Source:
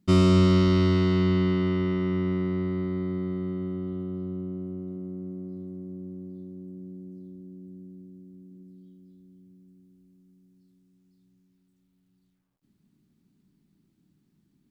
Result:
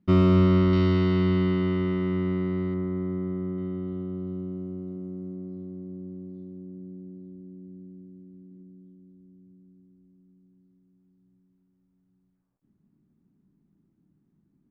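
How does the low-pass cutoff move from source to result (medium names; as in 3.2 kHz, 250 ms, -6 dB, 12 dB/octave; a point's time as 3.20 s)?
2.3 kHz
from 0.73 s 3.8 kHz
from 2.74 s 1.8 kHz
from 3.58 s 3.4 kHz
from 4.27 s 6.7 kHz
from 5.34 s 3.6 kHz
from 6.58 s 2.1 kHz
from 8.62 s 1.3 kHz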